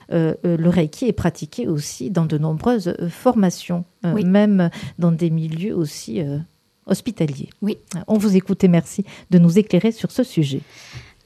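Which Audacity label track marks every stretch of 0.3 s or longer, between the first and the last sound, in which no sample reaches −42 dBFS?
6.460000	6.870000	silence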